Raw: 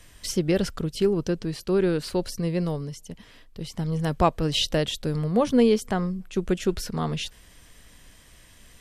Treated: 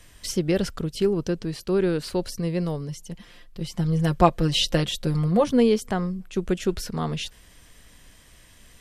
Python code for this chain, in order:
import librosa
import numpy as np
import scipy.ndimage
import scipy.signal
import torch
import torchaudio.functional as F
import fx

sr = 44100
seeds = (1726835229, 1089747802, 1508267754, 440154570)

y = fx.comb(x, sr, ms=5.7, depth=0.71, at=(2.88, 5.44))